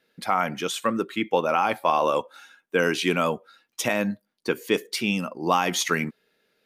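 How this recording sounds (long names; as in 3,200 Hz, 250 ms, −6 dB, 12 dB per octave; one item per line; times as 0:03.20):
background noise floor −76 dBFS
spectral slope −3.5 dB per octave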